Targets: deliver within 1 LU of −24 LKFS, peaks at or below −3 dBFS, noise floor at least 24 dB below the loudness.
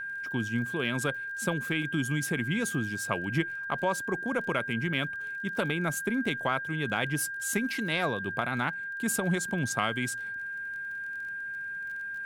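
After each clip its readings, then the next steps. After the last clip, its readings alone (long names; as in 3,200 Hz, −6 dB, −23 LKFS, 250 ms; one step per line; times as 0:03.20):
crackle rate 26 per second; interfering tone 1,600 Hz; level of the tone −34 dBFS; integrated loudness −30.5 LKFS; sample peak −11.0 dBFS; target loudness −24.0 LKFS
→ click removal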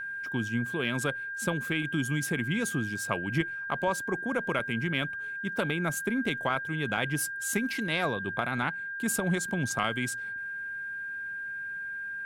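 crackle rate 0.16 per second; interfering tone 1,600 Hz; level of the tone −34 dBFS
→ notch filter 1,600 Hz, Q 30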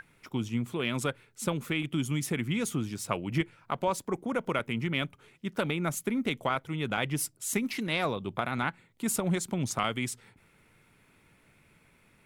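interfering tone none found; integrated loudness −31.5 LKFS; sample peak −13.0 dBFS; target loudness −24.0 LKFS
→ level +7.5 dB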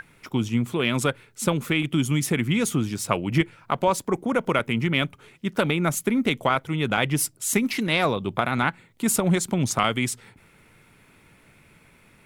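integrated loudness −24.0 LKFS; sample peak −5.5 dBFS; background noise floor −57 dBFS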